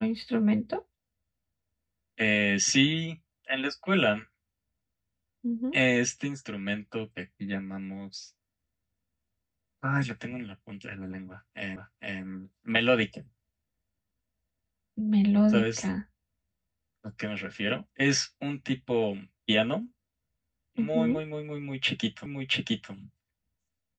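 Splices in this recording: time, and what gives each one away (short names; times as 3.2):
11.76 repeat of the last 0.46 s
22.26 repeat of the last 0.67 s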